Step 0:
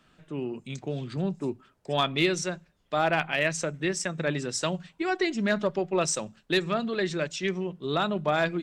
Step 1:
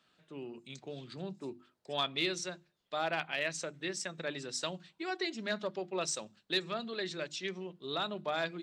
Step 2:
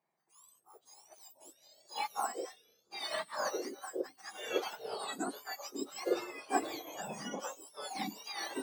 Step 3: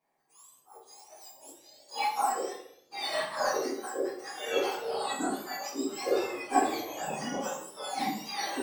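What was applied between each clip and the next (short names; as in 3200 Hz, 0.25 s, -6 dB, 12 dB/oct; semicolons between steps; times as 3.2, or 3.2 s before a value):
HPF 220 Hz 6 dB/oct; bell 4100 Hz +7.5 dB 0.69 oct; notches 50/100/150/200/250/300/350 Hz; gain -9 dB
spectrum mirrored in octaves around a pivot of 1700 Hz; echoes that change speed 0.471 s, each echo -5 st, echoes 3; upward expander 1.5:1, over -54 dBFS; gain +1 dB
in parallel at -12 dB: soft clip -33 dBFS, distortion -9 dB; on the sum: reverb RT60 0.65 s, pre-delay 4 ms, DRR -6 dB; gain -2 dB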